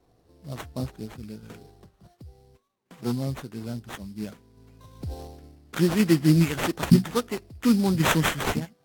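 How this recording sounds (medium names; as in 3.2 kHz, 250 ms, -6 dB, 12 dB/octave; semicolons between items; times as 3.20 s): random-step tremolo; aliases and images of a low sample rate 4.9 kHz, jitter 20%; AAC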